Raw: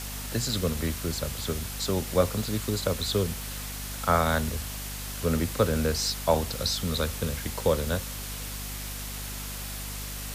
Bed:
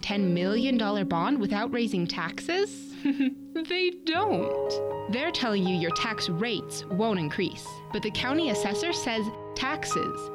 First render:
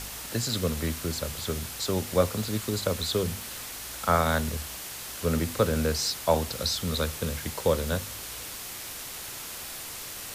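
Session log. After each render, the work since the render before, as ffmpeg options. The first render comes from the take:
-af "bandreject=f=50:t=h:w=4,bandreject=f=100:t=h:w=4,bandreject=f=150:t=h:w=4,bandreject=f=200:t=h:w=4,bandreject=f=250:t=h:w=4"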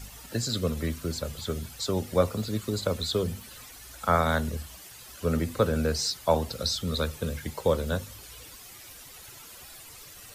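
-af "afftdn=nr=12:nf=-39"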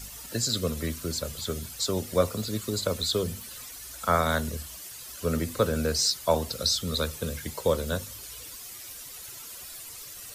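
-af "bass=f=250:g=-2,treble=f=4k:g=6,bandreject=f=810:w=12"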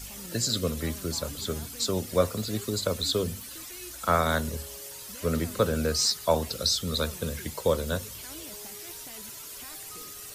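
-filter_complex "[1:a]volume=-21dB[a];[0:a][a]amix=inputs=2:normalize=0"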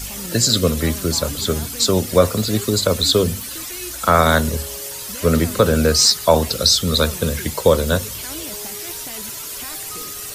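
-af "volume=11.5dB,alimiter=limit=-1dB:level=0:latency=1"

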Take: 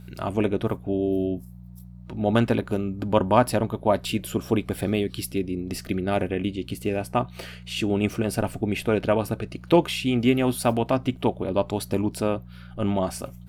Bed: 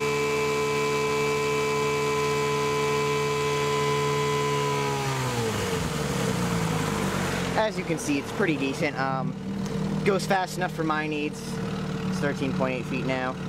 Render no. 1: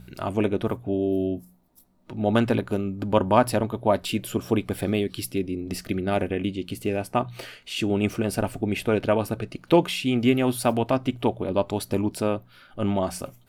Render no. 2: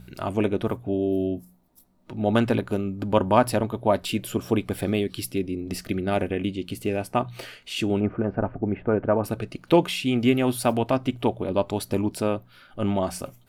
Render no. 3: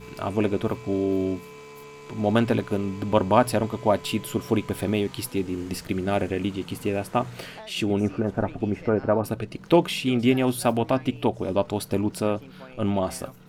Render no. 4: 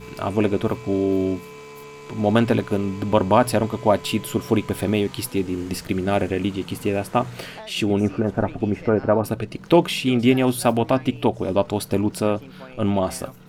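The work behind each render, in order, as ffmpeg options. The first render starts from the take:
-af "bandreject=f=60:t=h:w=4,bandreject=f=120:t=h:w=4,bandreject=f=180:t=h:w=4"
-filter_complex "[0:a]asettb=1/sr,asplit=3[a][b][c];[a]atrim=end=8.004[d];[b]atrim=start=8:end=9.24,asetpts=PTS-STARTPTS,afade=t=in:d=0.004:c=qsin,afade=t=out:st=1.236:d=0.004:c=qsin,lowpass=f=1.6k:w=0.5412,lowpass=f=1.6k:w=1.3066[e];[c]atrim=start=9.236[f];[d][e]acrossfade=d=0.004:c1=hsin:c2=qsin[g];[g][f]acrossfade=d=0.004:c1=qsin:c2=hsin"
-filter_complex "[1:a]volume=-18.5dB[a];[0:a][a]amix=inputs=2:normalize=0"
-af "volume=3.5dB,alimiter=limit=-3dB:level=0:latency=1"

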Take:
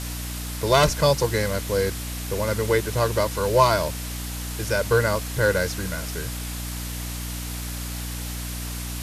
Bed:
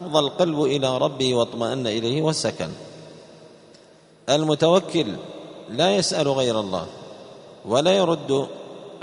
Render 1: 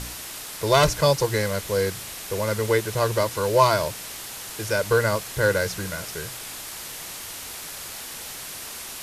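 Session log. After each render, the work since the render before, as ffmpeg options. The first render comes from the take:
-af "bandreject=f=60:t=h:w=4,bandreject=f=120:t=h:w=4,bandreject=f=180:t=h:w=4,bandreject=f=240:t=h:w=4,bandreject=f=300:t=h:w=4"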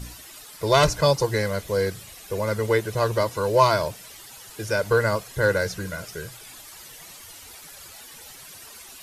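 -af "afftdn=nr=12:nf=-37"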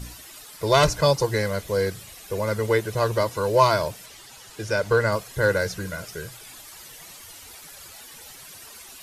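-filter_complex "[0:a]asettb=1/sr,asplit=3[a][b][c];[a]atrim=end=4.064[d];[b]atrim=start=4.06:end=5.12,asetpts=PTS-STARTPTS,afade=t=in:d=0.004:c=qsin,afade=t=out:st=1.056:d=0.004:c=qsin,acrossover=split=8500[e][f];[f]acompressor=threshold=-53dB:ratio=4:attack=1:release=60[g];[e][g]amix=inputs=2:normalize=0[h];[c]atrim=start=5.116[i];[d][h]acrossfade=d=0.004:c1=hsin:c2=qsin[j];[j][i]acrossfade=d=0.004:c1=qsin:c2=hsin"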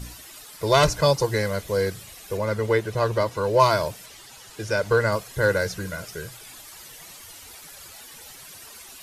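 -filter_complex "[0:a]asettb=1/sr,asplit=3[a][b][c];[a]atrim=end=2.374[d];[b]atrim=start=2.37:end=3.6,asetpts=PTS-STARTPTS,afade=t=in:d=0.004:c=qsin,afade=t=out:st=1.226:d=0.004:c=qsin,highshelf=f=6.9k:g=-9.5[e];[c]atrim=start=3.596[f];[d][e]acrossfade=d=0.004:c1=hsin:c2=qsin[g];[g][f]acrossfade=d=0.004:c1=qsin:c2=hsin"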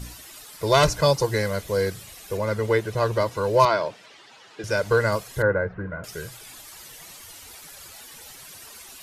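-filter_complex "[0:a]asettb=1/sr,asplit=3[a][b][c];[a]atrim=end=3.654[d];[b]atrim=start=3.65:end=4.64,asetpts=PTS-STARTPTS,afade=t=in:d=0.004:c=qsin,afade=t=out:st=0.986:d=0.004:c=qsin,highpass=230,lowpass=3.7k[e];[c]atrim=start=4.636[f];[d][e]acrossfade=d=0.004:c1=hsin:c2=qsin[g];[g][f]acrossfade=d=0.004:c1=qsin:c2=hsin,asettb=1/sr,asplit=3[h][i][j];[h]atrim=end=5.424[k];[i]atrim=start=5.42:end=6.04,asetpts=PTS-STARTPTS,afade=t=in:d=0.004:c=qsin,afade=t=out:st=0.616:d=0.004:c=qsin,lowpass=f=1.7k:w=0.5412,lowpass=f=1.7k:w=1.3066[l];[j]atrim=start=6.036[m];[k][l]acrossfade=d=0.004:c1=hsin:c2=qsin[n];[n][m]acrossfade=d=0.004:c1=qsin:c2=hsin"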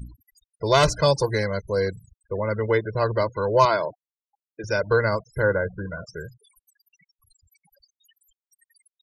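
-af "afftfilt=real='re*gte(hypot(re,im),0.0224)':imag='im*gte(hypot(re,im),0.0224)':win_size=1024:overlap=0.75"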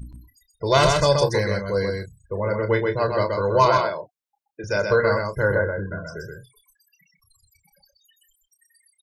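-filter_complex "[0:a]asplit=2[a][b];[b]adelay=30,volume=-9dB[c];[a][c]amix=inputs=2:normalize=0,aecho=1:1:127:0.631"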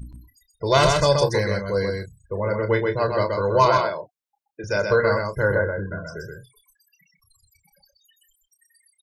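-af anull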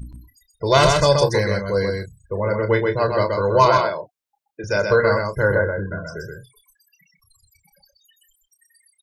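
-af "volume=2.5dB"

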